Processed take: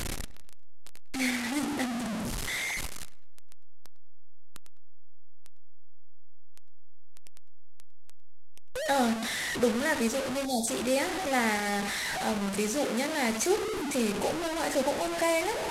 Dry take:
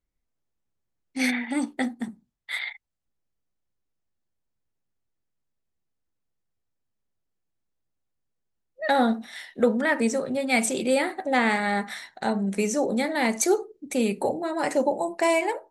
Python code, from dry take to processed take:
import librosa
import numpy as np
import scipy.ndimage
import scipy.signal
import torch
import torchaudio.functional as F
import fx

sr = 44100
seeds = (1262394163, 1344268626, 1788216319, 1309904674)

y = fx.delta_mod(x, sr, bps=64000, step_db=-21.5)
y = fx.spec_erase(y, sr, start_s=10.46, length_s=0.21, low_hz=920.0, high_hz=3300.0)
y = fx.highpass(y, sr, hz=fx.line((12.85, 190.0), (13.26, 55.0)), slope=12, at=(12.85, 13.26), fade=0.02)
y = fx.echo_filtered(y, sr, ms=104, feedback_pct=41, hz=4100.0, wet_db=-18)
y = y * librosa.db_to_amplitude(-5.0)